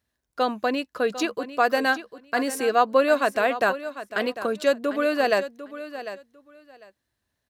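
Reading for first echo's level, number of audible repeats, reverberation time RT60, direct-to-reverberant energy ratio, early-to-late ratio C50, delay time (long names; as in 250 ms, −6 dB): −13.0 dB, 2, no reverb audible, no reverb audible, no reverb audible, 749 ms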